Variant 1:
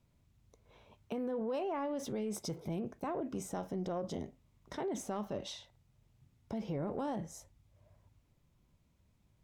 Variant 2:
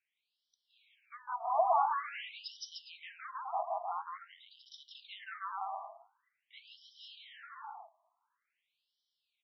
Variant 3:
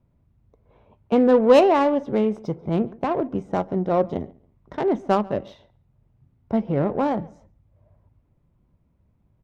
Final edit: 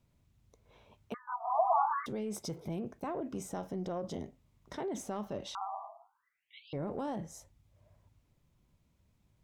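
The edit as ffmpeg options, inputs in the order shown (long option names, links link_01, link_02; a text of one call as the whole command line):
ffmpeg -i take0.wav -i take1.wav -filter_complex "[1:a]asplit=2[link_01][link_02];[0:a]asplit=3[link_03][link_04][link_05];[link_03]atrim=end=1.142[link_06];[link_01]atrim=start=1.138:end=2.062[link_07];[link_04]atrim=start=2.058:end=5.552[link_08];[link_02]atrim=start=5.548:end=6.732[link_09];[link_05]atrim=start=6.728[link_10];[link_06][link_07]acrossfade=duration=0.004:curve1=hsin:curve2=hsin[link_11];[link_11][link_08]acrossfade=duration=0.004:curve1=hsin:curve2=hsin[link_12];[link_12][link_09]acrossfade=duration=0.004:curve1=hsin:curve2=hsin[link_13];[link_13][link_10]acrossfade=duration=0.004:curve1=hsin:curve2=hsin" out.wav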